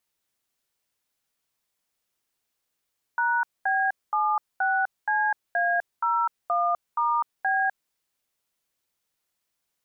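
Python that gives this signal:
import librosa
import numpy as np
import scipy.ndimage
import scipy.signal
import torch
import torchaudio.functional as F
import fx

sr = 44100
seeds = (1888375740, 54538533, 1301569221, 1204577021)

y = fx.dtmf(sr, digits='#B76CA01*B', tone_ms=252, gap_ms=222, level_db=-23.5)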